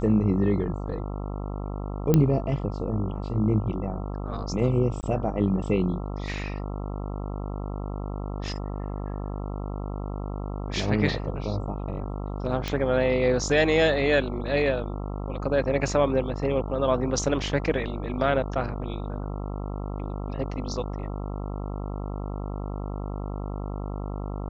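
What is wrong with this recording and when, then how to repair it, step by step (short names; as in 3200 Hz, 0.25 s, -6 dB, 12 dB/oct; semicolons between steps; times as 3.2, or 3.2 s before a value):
buzz 50 Hz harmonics 27 -32 dBFS
2.14 pop -8 dBFS
5.01–5.03 gap 19 ms
12.68 pop -14 dBFS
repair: de-click; de-hum 50 Hz, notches 27; interpolate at 5.01, 19 ms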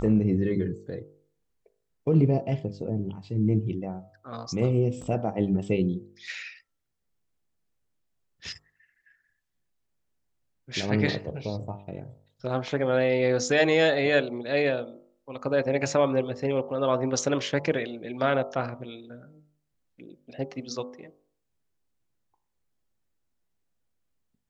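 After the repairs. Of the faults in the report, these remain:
none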